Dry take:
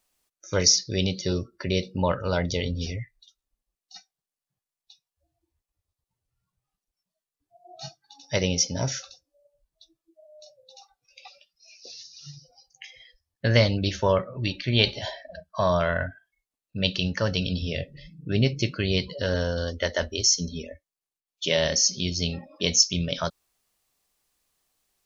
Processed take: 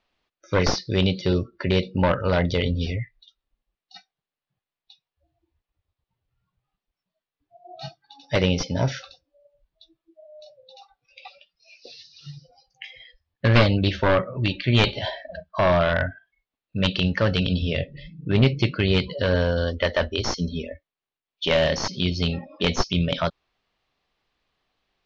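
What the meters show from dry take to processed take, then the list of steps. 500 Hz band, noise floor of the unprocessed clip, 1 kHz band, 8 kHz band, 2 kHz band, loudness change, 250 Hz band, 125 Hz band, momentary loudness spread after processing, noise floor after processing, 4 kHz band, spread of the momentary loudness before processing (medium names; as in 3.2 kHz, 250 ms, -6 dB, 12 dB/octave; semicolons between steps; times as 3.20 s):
+3.5 dB, under -85 dBFS, +4.5 dB, no reading, +4.0 dB, +2.0 dB, +4.5 dB, +4.5 dB, 17 LU, under -85 dBFS, -1.0 dB, 19 LU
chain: one-sided wavefolder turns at -18 dBFS; low-pass 3.9 kHz 24 dB/octave; trim +5 dB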